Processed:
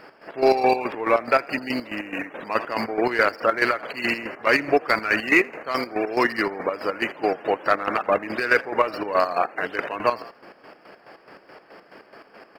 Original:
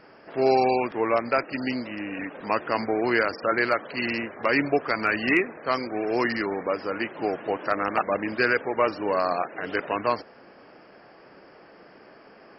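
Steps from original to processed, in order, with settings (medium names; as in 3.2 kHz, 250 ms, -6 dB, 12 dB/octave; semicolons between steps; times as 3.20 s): median filter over 5 samples; bass shelf 320 Hz -7.5 dB; in parallel at -6 dB: saturation -20 dBFS, distortion -12 dB; on the sum: frequency-shifting echo 83 ms, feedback 36%, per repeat +41 Hz, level -17 dB; square tremolo 4.7 Hz, depth 65%, duty 45%; trim +4 dB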